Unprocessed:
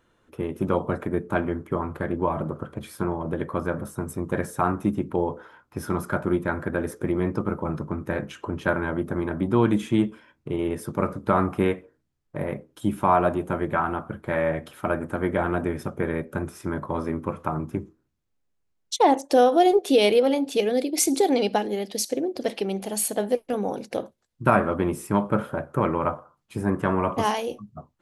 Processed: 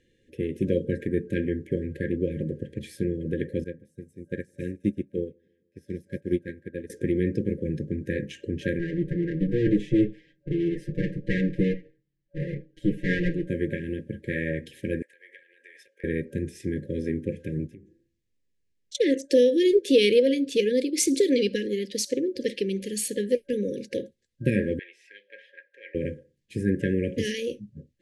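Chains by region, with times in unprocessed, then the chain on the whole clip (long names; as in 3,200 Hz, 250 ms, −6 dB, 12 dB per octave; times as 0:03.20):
0:03.64–0:06.90: repeating echo 155 ms, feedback 56%, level −16 dB + expander for the loud parts 2.5 to 1, over −35 dBFS
0:08.79–0:13.50: lower of the sound and its delayed copy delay 5.7 ms + low-pass filter 1,600 Hz 6 dB per octave + comb filter 6.7 ms, depth 81%
0:15.02–0:16.04: high-pass filter 890 Hz 24 dB per octave + high-shelf EQ 3,300 Hz −11 dB + downward compressor 5 to 1, threshold −43 dBFS
0:17.67–0:18.95: hum removal 168.8 Hz, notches 10 + downward compressor 3 to 1, threshold −49 dBFS
0:24.79–0:25.95: high-pass filter 960 Hz 24 dB per octave + high-frequency loss of the air 250 metres
whole clip: brick-wall band-stop 570–1,600 Hz; low-pass filter 8,700 Hz 12 dB per octave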